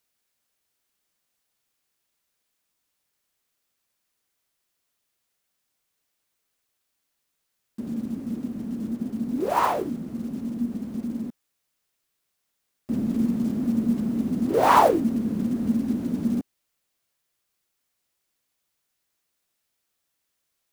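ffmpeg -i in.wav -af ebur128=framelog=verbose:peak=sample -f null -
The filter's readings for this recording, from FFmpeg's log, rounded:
Integrated loudness:
  I:         -25.3 LUFS
  Threshold: -35.6 LUFS
Loudness range:
  LRA:        13.4 LU
  Threshold: -47.3 LUFS
  LRA low:   -36.2 LUFS
  LRA high:  -22.9 LUFS
Sample peak:
  Peak:       -4.7 dBFS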